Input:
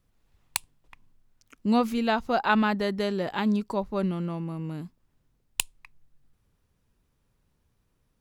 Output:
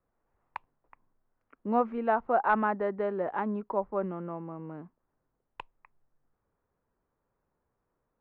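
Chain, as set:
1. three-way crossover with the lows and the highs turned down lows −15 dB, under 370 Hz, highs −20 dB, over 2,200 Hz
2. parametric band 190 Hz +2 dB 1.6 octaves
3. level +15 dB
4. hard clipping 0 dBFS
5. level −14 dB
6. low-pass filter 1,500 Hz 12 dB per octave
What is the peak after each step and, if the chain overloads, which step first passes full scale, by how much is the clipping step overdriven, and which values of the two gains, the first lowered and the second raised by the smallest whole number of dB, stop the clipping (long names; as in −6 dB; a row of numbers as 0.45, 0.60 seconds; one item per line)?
−11.0, −11.0, +4.0, 0.0, −14.0, −14.0 dBFS
step 3, 4.0 dB
step 3 +11 dB, step 5 −10 dB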